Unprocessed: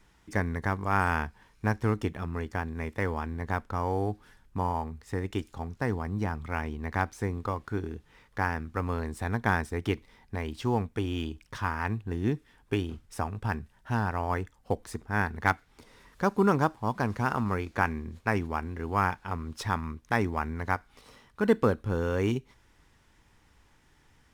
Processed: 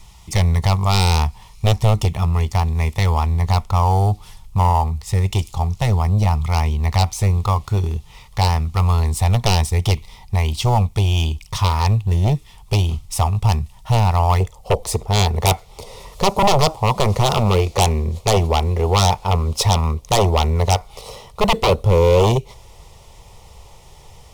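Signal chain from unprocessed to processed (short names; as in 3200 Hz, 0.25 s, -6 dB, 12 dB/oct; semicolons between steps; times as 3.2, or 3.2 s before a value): bell 500 Hz -12.5 dB 1 oct, from 14.4 s +3 dB; sine folder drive 16 dB, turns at -7.5 dBFS; fixed phaser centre 660 Hz, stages 4; gain +1 dB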